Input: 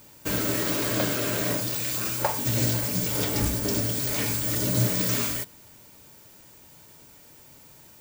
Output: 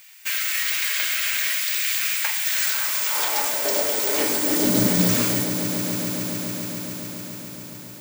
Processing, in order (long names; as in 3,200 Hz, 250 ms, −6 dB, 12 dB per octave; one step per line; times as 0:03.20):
high-pass filter sweep 2,100 Hz → 130 Hz, 0:02.30–0:05.42
echo that builds up and dies away 140 ms, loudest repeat 5, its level −13 dB
level +3.5 dB